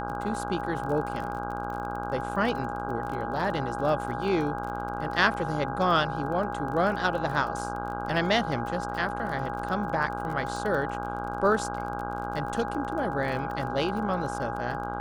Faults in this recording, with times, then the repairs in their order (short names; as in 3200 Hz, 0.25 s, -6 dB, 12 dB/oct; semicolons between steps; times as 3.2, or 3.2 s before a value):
buzz 60 Hz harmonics 27 -35 dBFS
crackle 27/s -34 dBFS
tone 820 Hz -34 dBFS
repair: de-click; de-hum 60 Hz, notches 27; notch 820 Hz, Q 30